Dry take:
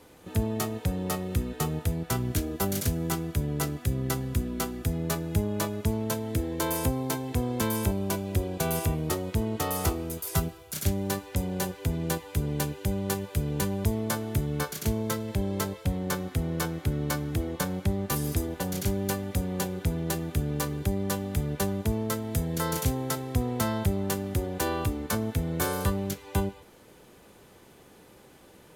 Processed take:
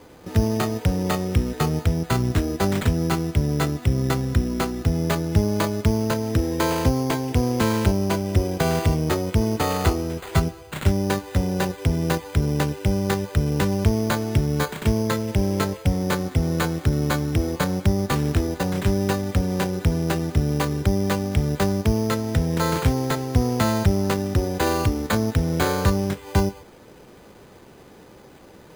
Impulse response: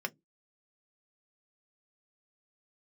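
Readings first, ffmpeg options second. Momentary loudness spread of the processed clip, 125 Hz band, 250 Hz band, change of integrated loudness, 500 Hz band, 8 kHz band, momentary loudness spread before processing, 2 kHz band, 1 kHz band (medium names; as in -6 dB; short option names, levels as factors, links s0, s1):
3 LU, +7.5 dB, +7.5 dB, +7.0 dB, +7.5 dB, +0.5 dB, 3 LU, +7.5 dB, +7.5 dB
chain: -af "adynamicsmooth=sensitivity=8:basefreq=3900,acrusher=samples=8:mix=1:aa=0.000001,volume=2.37"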